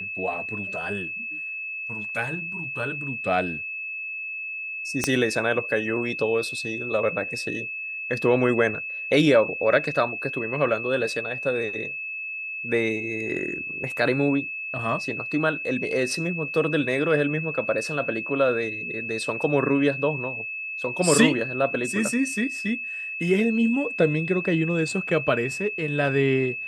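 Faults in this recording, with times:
whistle 2,600 Hz −30 dBFS
0:05.04: click −7 dBFS

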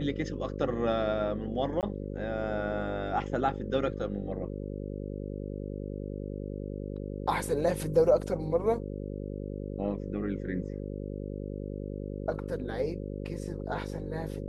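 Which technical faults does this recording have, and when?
mains buzz 50 Hz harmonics 11 −37 dBFS
0:01.81–0:01.83: drop-out 18 ms

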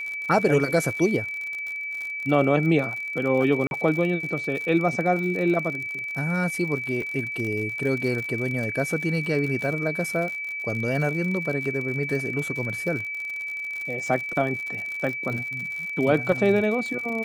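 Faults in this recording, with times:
surface crackle 65 per second −30 dBFS
whistle 2,300 Hz −29 dBFS
0:03.67–0:03.71: drop-out 41 ms
0:07.02: drop-out 2 ms

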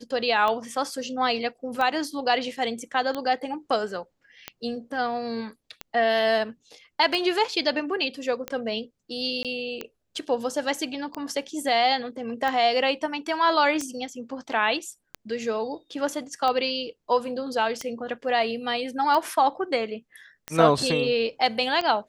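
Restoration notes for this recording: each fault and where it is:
scratch tick 45 rpm −15 dBFS
0:09.43–0:09.45: drop-out 17 ms

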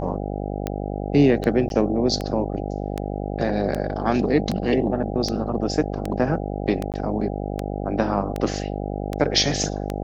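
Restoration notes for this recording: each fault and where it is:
mains buzz 50 Hz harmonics 16 −28 dBFS
scratch tick 78 rpm −12 dBFS
0:01.69–0:01.70: drop-out 12 ms
0:06.92–0:06.94: drop-out 18 ms

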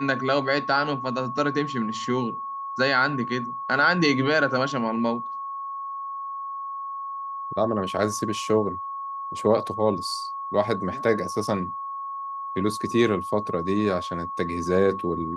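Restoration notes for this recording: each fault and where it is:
whistle 1,100 Hz −30 dBFS

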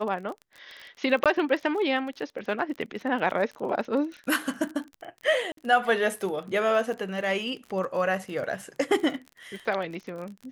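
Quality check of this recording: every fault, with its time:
surface crackle 27 per second −34 dBFS
0:01.24–0:01.26: drop-out 17 ms
0:05.52–0:05.57: drop-out 53 ms

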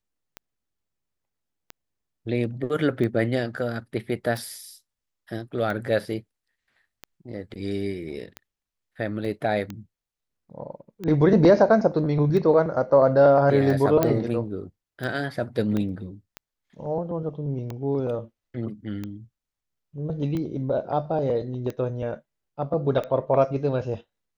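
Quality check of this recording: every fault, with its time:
scratch tick 45 rpm −19 dBFS
0:09.25: drop-out 2.4 ms
0:14.03: click −7 dBFS
0:15.77: click −16 dBFS

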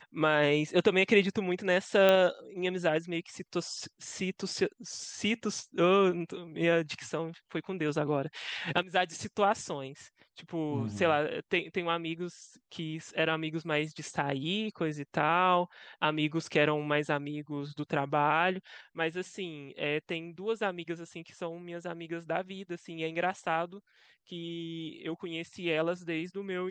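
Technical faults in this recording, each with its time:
0:02.09: click −12 dBFS

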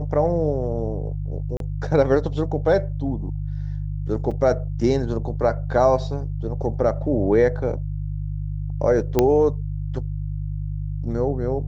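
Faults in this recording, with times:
mains hum 50 Hz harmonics 3 −27 dBFS
0:01.57–0:01.60: drop-out 32 ms
0:04.31: drop-out 4.8 ms
0:09.19: click −4 dBFS

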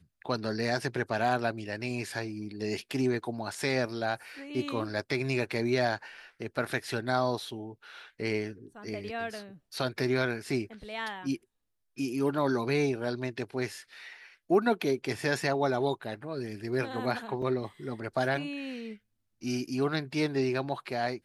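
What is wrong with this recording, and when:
0:17.42: drop-out 3.7 ms

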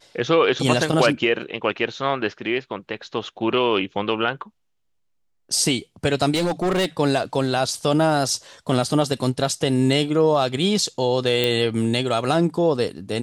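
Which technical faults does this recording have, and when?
0:06.34–0:06.86: clipping −17.5 dBFS
0:11.44: click

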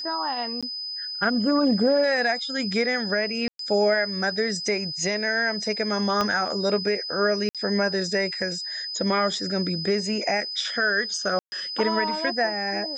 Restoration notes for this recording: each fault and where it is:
whistle 5,000 Hz −30 dBFS
0:00.61–0:00.63: drop-out 16 ms
0:03.48–0:03.59: drop-out 113 ms
0:06.21: click −11 dBFS
0:07.49–0:07.55: drop-out 57 ms
0:11.39–0:11.52: drop-out 130 ms

